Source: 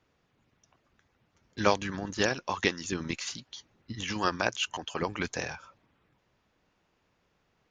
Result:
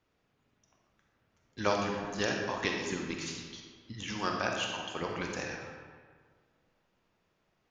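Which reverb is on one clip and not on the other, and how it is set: algorithmic reverb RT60 1.7 s, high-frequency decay 0.65×, pre-delay 5 ms, DRR 0.5 dB; trim -5.5 dB

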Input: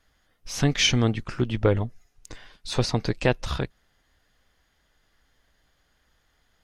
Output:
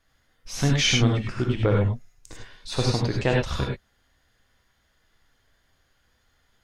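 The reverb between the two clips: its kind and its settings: gated-style reverb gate 120 ms rising, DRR -0.5 dB; trim -2.5 dB

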